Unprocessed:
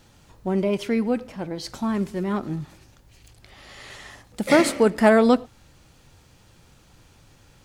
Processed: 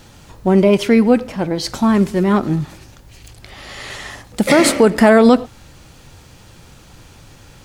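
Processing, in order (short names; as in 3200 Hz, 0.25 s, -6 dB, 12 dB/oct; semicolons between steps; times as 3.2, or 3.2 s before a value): maximiser +12 dB; gain -1 dB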